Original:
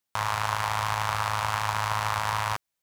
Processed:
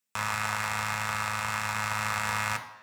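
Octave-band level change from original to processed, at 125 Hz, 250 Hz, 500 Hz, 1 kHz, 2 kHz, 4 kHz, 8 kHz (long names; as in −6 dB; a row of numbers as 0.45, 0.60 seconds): −5.0, +4.0, −4.5, −4.5, +1.5, −3.0, +1.5 decibels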